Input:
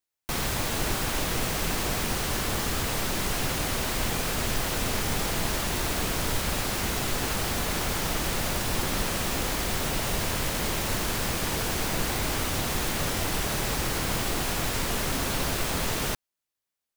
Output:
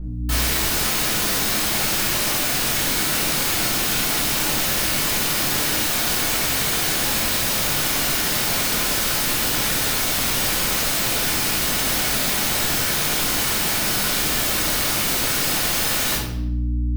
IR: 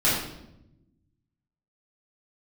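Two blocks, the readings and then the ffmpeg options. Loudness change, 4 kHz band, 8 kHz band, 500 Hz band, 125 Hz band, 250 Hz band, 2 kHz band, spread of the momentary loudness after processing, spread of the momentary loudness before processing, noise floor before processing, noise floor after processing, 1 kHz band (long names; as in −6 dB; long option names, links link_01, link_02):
+9.0 dB, +9.5 dB, +10.0 dB, +2.5 dB, +2.0 dB, +4.0 dB, +7.5 dB, 0 LU, 0 LU, below −85 dBFS, −22 dBFS, +4.5 dB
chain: -filter_complex "[0:a]aeval=exprs='val(0)+0.0112*(sin(2*PI*60*n/s)+sin(2*PI*2*60*n/s)/2+sin(2*PI*3*60*n/s)/3+sin(2*PI*4*60*n/s)/4+sin(2*PI*5*60*n/s)/5)':channel_layout=same,aeval=exprs='(mod(23.7*val(0)+1,2)-1)/23.7':channel_layout=same[link_01];[1:a]atrim=start_sample=2205[link_02];[link_01][link_02]afir=irnorm=-1:irlink=0,volume=-2.5dB"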